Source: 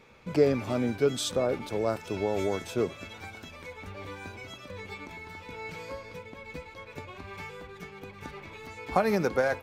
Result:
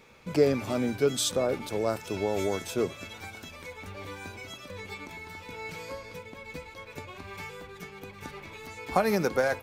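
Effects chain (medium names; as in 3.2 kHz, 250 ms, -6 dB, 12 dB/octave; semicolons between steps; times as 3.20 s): treble shelf 5.7 kHz +8.5 dB; hum notches 60/120 Hz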